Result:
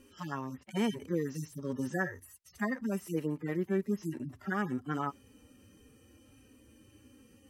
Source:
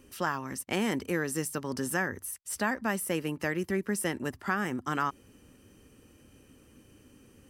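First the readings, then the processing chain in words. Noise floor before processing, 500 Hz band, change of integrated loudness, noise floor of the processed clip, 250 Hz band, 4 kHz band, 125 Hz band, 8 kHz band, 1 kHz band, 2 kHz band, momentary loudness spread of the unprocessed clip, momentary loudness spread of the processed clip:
-60 dBFS, -3.0 dB, -3.5 dB, -63 dBFS, -1.0 dB, -8.0 dB, -0.5 dB, -15.0 dB, -6.5 dB, -7.0 dB, 4 LU, 8 LU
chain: median-filter separation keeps harmonic

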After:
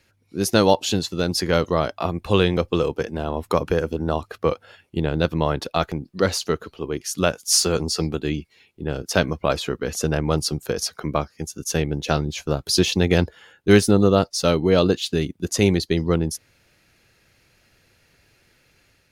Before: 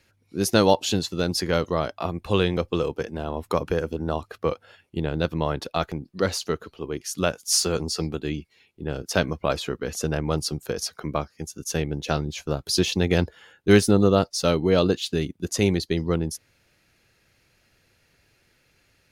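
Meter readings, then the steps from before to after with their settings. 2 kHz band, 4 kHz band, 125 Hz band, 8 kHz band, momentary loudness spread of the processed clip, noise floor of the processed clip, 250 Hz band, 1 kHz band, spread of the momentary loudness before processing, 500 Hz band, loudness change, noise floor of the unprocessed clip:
+3.0 dB, +3.0 dB, +3.0 dB, +3.0 dB, 10 LU, -63 dBFS, +2.5 dB, +3.0 dB, 12 LU, +3.0 dB, +3.0 dB, -65 dBFS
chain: AGC gain up to 3 dB; gain +1 dB

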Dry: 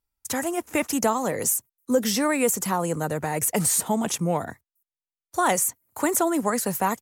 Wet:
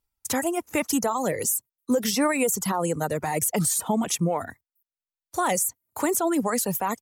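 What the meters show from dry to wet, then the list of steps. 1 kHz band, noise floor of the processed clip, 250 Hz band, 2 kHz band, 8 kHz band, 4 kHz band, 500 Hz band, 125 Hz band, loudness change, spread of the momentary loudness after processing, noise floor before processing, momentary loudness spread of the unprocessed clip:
-1.5 dB, under -85 dBFS, 0.0 dB, -1.5 dB, -1.0 dB, -0.5 dB, -1.0 dB, 0.0 dB, -1.0 dB, 5 LU, under -85 dBFS, 6 LU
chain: bell 1600 Hz -2.5 dB 0.45 oct; limiter -16.5 dBFS, peak gain reduction 6 dB; reverb removal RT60 0.96 s; gain +2.5 dB

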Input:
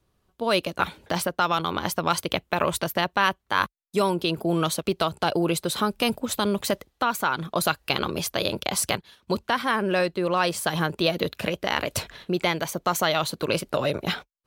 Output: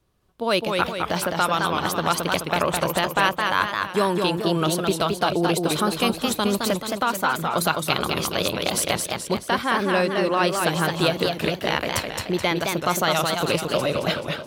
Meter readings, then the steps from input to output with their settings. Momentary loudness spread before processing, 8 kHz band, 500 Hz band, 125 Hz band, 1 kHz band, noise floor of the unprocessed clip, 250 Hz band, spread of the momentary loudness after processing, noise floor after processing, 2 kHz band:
4 LU, +2.5 dB, +3.0 dB, +3.0 dB, +3.0 dB, -73 dBFS, +3.0 dB, 3 LU, -38 dBFS, +3.0 dB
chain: warbling echo 0.215 s, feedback 51%, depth 166 cents, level -4 dB; gain +1 dB

